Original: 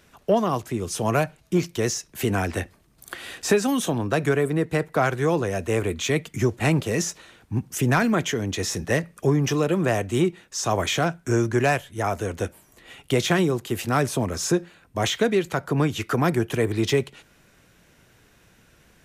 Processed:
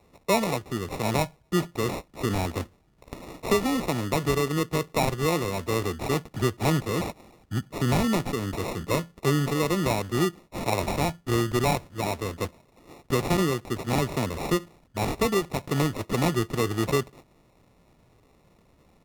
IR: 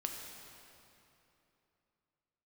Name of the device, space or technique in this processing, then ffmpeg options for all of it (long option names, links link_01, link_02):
crushed at another speed: -af "asetrate=35280,aresample=44100,acrusher=samples=35:mix=1:aa=0.000001,asetrate=55125,aresample=44100,volume=-3dB"